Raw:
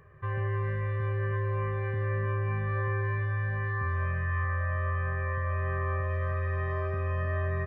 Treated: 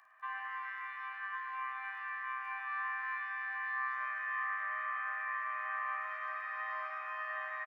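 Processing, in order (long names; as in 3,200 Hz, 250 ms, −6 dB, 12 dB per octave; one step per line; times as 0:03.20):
Chebyshev high-pass filter 650 Hz, order 10
echo with shifted repeats 107 ms, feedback 63%, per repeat +130 Hz, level −14.5 dB
surface crackle 32 per second −62 dBFS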